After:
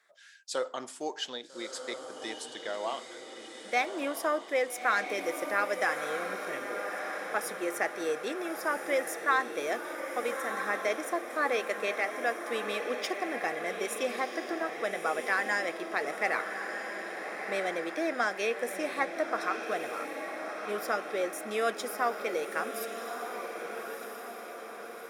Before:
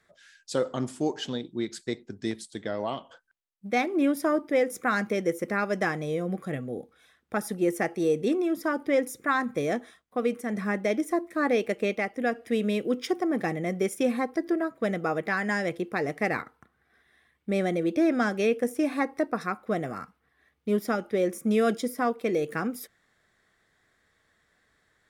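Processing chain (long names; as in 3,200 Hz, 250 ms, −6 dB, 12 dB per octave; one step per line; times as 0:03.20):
high-pass filter 640 Hz 12 dB per octave
on a send: feedback delay with all-pass diffusion 1,283 ms, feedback 57%, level −6.5 dB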